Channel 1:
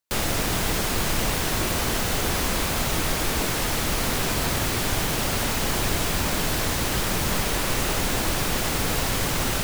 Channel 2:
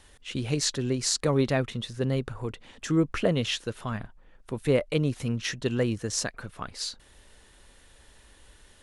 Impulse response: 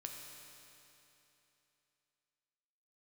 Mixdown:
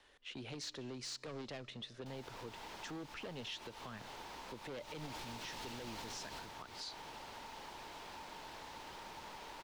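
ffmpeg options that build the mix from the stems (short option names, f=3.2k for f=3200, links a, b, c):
-filter_complex "[0:a]equalizer=f=900:t=o:w=0.26:g=14,acrossover=split=240|920|6800[a][b][c][d];[a]acompressor=threshold=-30dB:ratio=4[e];[b]acompressor=threshold=-32dB:ratio=4[f];[c]acompressor=threshold=-31dB:ratio=4[g];[d]acompressor=threshold=-34dB:ratio=4[h];[e][f][g][h]amix=inputs=4:normalize=0,adelay=1950,volume=-5dB,afade=t=in:st=4.86:d=0.36:silence=0.251189,afade=t=out:st=6.15:d=0.38:silence=0.223872[i];[1:a]asoftclip=type=hard:threshold=-25.5dB,volume=-7.5dB,asplit=3[j][k][l];[k]volume=-15dB[m];[l]apad=whole_len=510802[n];[i][n]sidechaincompress=threshold=-40dB:ratio=8:attack=6.9:release=187[o];[2:a]atrim=start_sample=2205[p];[m][p]afir=irnorm=-1:irlink=0[q];[o][j][q]amix=inputs=3:normalize=0,acrossover=split=280 5300:gain=0.2 1 0.141[r][s][t];[r][s][t]amix=inputs=3:normalize=0,acrossover=split=230|3000[u][v][w];[v]acompressor=threshold=-51dB:ratio=2[x];[u][x][w]amix=inputs=3:normalize=0,alimiter=level_in=12.5dB:limit=-24dB:level=0:latency=1:release=116,volume=-12.5dB"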